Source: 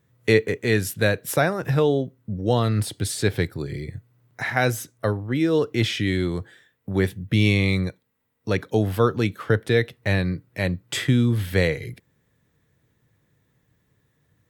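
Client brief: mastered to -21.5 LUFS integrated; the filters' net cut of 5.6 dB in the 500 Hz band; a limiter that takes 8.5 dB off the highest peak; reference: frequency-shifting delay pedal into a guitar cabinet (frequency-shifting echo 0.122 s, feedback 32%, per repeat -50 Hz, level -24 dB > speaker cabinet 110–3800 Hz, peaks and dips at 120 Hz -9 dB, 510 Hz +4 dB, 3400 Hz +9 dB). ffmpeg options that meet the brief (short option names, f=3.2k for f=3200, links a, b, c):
-filter_complex "[0:a]equalizer=f=500:t=o:g=-9,alimiter=limit=-15dB:level=0:latency=1,asplit=3[a][b][c];[b]adelay=122,afreqshift=-50,volume=-24dB[d];[c]adelay=244,afreqshift=-100,volume=-33.9dB[e];[a][d][e]amix=inputs=3:normalize=0,highpass=110,equalizer=f=120:t=q:w=4:g=-9,equalizer=f=510:t=q:w=4:g=4,equalizer=f=3.4k:t=q:w=4:g=9,lowpass=f=3.8k:w=0.5412,lowpass=f=3.8k:w=1.3066,volume=7dB"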